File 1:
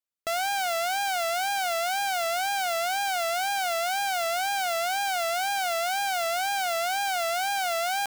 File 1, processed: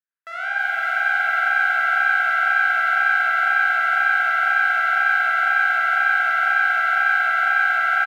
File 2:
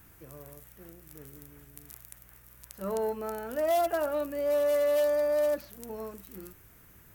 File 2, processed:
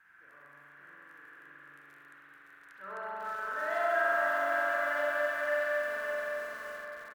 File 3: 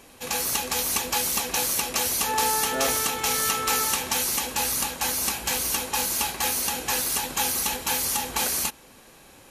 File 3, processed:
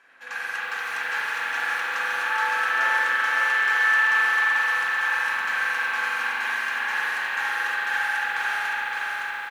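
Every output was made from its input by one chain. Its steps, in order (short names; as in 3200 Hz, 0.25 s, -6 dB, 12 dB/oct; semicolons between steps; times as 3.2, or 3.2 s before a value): band-pass 1600 Hz, Q 5.6; on a send: feedback echo 0.564 s, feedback 49%, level -4 dB; on the sum: spring tank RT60 3.5 s, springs 42 ms, chirp 30 ms, DRR -7 dB; lo-fi delay 0.32 s, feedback 35%, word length 8-bit, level -13 dB; gain +6.5 dB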